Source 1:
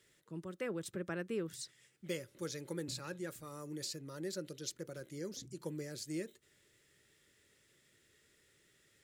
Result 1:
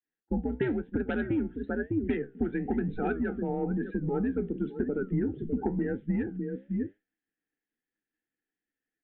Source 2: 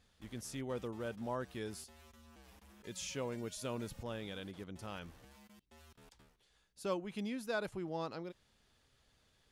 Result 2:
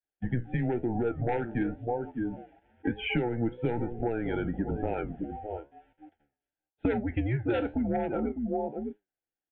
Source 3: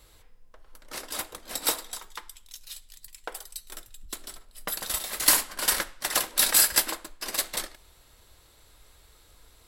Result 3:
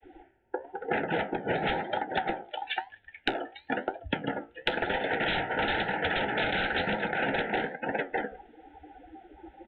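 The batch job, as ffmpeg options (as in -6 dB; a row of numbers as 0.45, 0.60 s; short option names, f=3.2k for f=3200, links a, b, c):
-af "aecho=1:1:604:0.224,adynamicequalizer=threshold=0.00141:dfrequency=280:dqfactor=2.2:tfrequency=280:tqfactor=2.2:attack=5:release=100:ratio=0.375:range=2:mode=boostabove:tftype=bell,agate=range=-33dB:threshold=-55dB:ratio=3:detection=peak,acontrast=77,highpass=100,equalizer=f=140:t=q:w=4:g=-7,equalizer=f=200:t=q:w=4:g=-4,equalizer=f=420:t=q:w=4:g=6,equalizer=f=610:t=q:w=4:g=5,equalizer=f=890:t=q:w=4:g=9,equalizer=f=1.8k:t=q:w=4:g=4,lowpass=f=2.8k:w=0.5412,lowpass=f=2.8k:w=1.3066,afftdn=nr=23:nf=-41,aresample=8000,aeval=exprs='0.794*sin(PI/2*7.08*val(0)/0.794)':c=same,aresample=44100,afreqshift=-120,asuperstop=centerf=1100:order=8:qfactor=2.7,acompressor=threshold=-22dB:ratio=10,flanger=delay=9.3:depth=8.4:regen=69:speed=1:shape=triangular"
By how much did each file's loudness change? 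+11.5, +10.5, -6.0 LU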